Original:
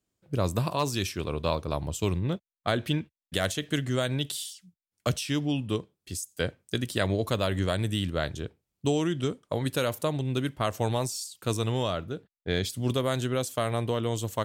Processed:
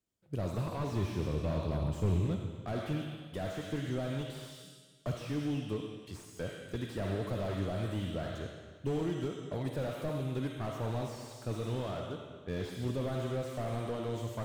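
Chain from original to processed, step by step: 0.92–2.25 s: bass shelf 310 Hz +8 dB; reverberation RT60 1.6 s, pre-delay 15 ms, DRR 5.5 dB; slew-rate limiter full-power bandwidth 30 Hz; trim -7 dB

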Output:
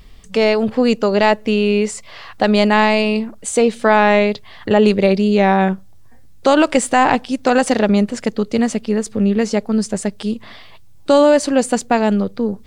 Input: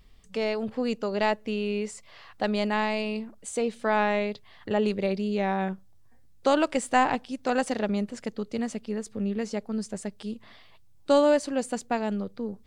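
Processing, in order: loudness maximiser +14.5 dB; trim -1 dB

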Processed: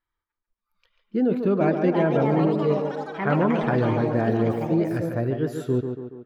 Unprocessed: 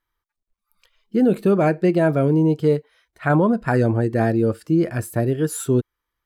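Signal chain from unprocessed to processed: boxcar filter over 5 samples; tape echo 143 ms, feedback 60%, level -5 dB, low-pass 2.8 kHz; ever faster or slower copies 745 ms, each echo +5 st, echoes 3, each echo -6 dB; trim -5 dB

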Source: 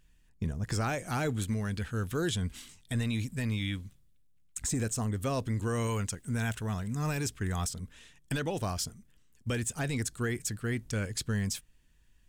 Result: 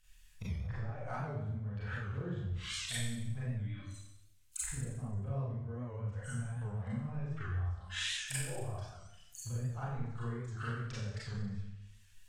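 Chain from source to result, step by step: companding laws mixed up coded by mu; spectral noise reduction 21 dB; low-pass that closes with the level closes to 340 Hz, closed at -30 dBFS; amplifier tone stack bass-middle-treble 10-0-10; hum notches 50/100 Hz; compression 5:1, threshold -57 dBFS, peak gain reduction 16.5 dB; flange 1 Hz, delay 3.4 ms, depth 5.5 ms, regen +87%; Schroeder reverb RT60 0.84 s, combs from 30 ms, DRR -9 dB; warped record 78 rpm, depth 100 cents; trim +17.5 dB

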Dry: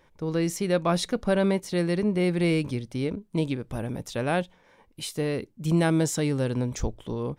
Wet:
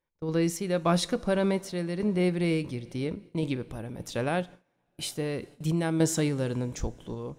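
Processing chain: two-slope reverb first 0.31 s, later 4.8 s, from -18 dB, DRR 14.5 dB; random-step tremolo; gate with hold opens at -34 dBFS

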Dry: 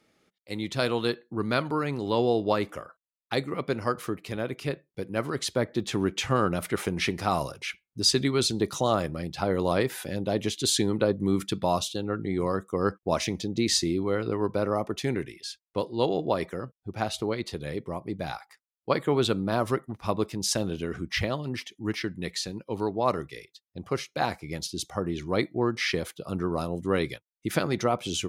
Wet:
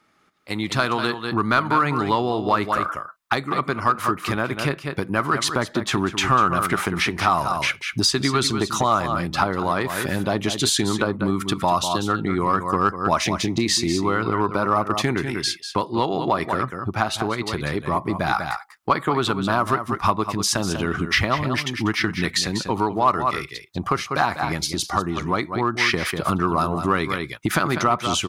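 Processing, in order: on a send: delay 194 ms -11 dB; on the sum: compression 4:1, threshold -34 dBFS, peak gain reduction 13.5 dB; peaking EQ 1.2 kHz +11 dB 1.1 oct; level rider gain up to 14 dB; peaking EQ 500 Hz -7.5 dB 0.46 oct; in parallel at -7 dB: hard clipper -13.5 dBFS, distortion -15 dB; on the sum: trim -2.5 dB

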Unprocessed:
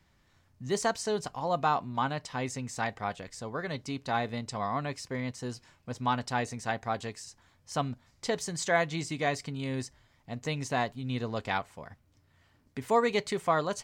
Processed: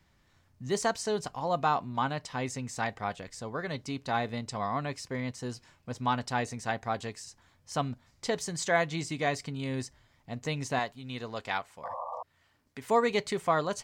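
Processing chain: 11.83–12.23 s: painted sound noise 490–1200 Hz -36 dBFS; 10.79–12.88 s: bass shelf 410 Hz -9 dB

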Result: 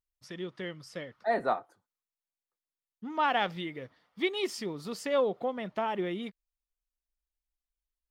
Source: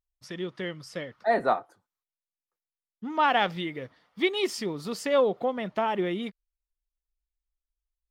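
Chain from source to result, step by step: trim -4.5 dB

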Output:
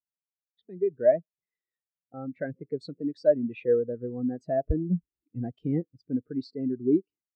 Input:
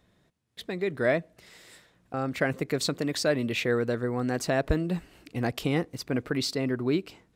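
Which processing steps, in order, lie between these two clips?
in parallel at 0 dB: compression, threshold -38 dBFS, peak gain reduction 17.5 dB; on the sum: spectral contrast expander 2.5:1

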